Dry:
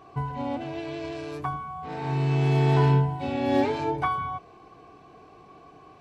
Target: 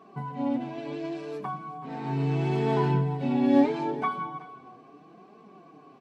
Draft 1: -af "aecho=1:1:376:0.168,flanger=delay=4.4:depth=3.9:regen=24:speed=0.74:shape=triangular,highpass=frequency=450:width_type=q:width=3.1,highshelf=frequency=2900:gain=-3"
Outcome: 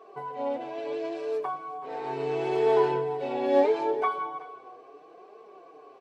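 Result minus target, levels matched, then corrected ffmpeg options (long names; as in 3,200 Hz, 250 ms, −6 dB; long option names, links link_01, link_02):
250 Hz band −9.0 dB
-af "aecho=1:1:376:0.168,flanger=delay=4.4:depth=3.9:regen=24:speed=0.74:shape=triangular,highpass=frequency=210:width_type=q:width=3.1,highshelf=frequency=2900:gain=-3"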